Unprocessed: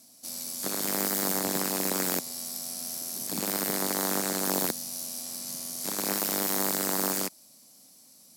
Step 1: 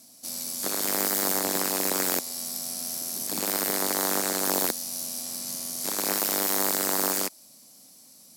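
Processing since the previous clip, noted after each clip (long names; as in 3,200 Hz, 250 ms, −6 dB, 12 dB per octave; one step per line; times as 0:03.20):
dynamic equaliser 150 Hz, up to −8 dB, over −50 dBFS, Q 1
level +3 dB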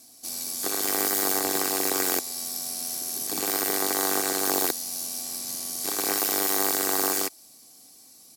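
comb filter 2.6 ms, depth 49%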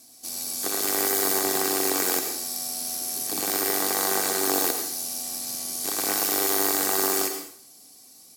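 dense smooth reverb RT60 0.56 s, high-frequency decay 1×, pre-delay 80 ms, DRR 5.5 dB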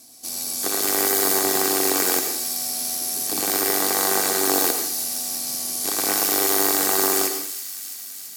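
delay with a high-pass on its return 334 ms, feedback 73%, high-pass 2,800 Hz, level −12 dB
level +3.5 dB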